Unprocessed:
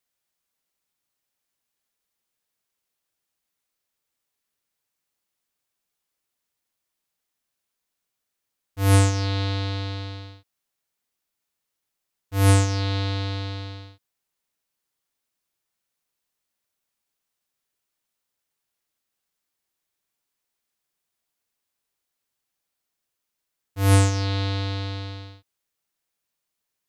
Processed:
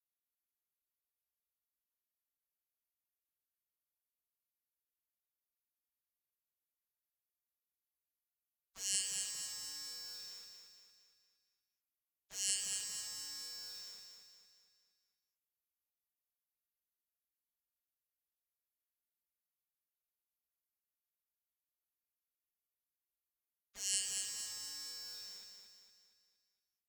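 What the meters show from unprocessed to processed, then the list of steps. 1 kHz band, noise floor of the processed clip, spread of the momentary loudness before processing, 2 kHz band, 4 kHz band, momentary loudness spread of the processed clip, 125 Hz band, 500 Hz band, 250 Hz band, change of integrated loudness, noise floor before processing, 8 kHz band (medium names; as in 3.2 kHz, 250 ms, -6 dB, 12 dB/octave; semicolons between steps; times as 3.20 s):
-32.0 dB, under -85 dBFS, 18 LU, -20.0 dB, -9.0 dB, 20 LU, under -40 dB, -35.5 dB, under -40 dB, -16.5 dB, -82 dBFS, -3.0 dB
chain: Chebyshev band-pass 110–7000 Hz, order 3; spectral gate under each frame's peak -30 dB weak; comb 4.3 ms, depth 37%; in parallel at -5.5 dB: sine folder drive 18 dB, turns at -49 dBFS; on the sum: feedback comb 130 Hz, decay 1.8 s, mix 60%; feedback delay 231 ms, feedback 49%, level -5.5 dB; trim +11 dB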